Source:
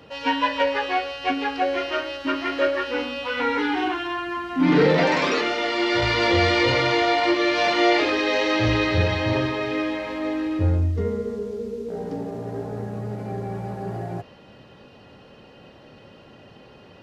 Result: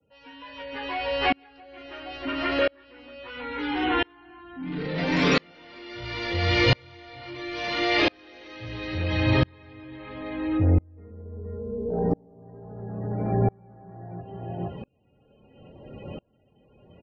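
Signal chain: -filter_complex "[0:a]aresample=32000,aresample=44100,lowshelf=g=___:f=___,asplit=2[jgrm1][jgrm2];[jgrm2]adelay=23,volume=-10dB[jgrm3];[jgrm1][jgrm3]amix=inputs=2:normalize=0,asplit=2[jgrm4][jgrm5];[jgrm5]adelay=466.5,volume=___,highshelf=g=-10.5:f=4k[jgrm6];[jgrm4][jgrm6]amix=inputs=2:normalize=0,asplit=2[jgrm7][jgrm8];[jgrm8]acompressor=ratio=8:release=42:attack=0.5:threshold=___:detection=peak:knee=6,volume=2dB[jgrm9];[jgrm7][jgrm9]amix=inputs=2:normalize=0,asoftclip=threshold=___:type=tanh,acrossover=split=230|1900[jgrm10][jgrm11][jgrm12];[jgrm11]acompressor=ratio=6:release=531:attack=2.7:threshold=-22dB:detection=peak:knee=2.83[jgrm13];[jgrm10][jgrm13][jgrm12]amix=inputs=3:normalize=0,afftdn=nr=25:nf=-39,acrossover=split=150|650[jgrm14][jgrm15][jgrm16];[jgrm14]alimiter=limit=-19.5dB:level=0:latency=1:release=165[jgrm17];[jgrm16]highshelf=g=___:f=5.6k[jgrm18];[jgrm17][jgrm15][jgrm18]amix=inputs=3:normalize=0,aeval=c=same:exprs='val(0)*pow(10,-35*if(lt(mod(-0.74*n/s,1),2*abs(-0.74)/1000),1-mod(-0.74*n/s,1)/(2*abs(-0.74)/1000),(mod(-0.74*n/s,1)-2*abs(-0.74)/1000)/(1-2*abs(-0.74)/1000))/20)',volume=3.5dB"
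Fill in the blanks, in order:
8.5, 98, -8dB, -25dB, -8dB, -5.5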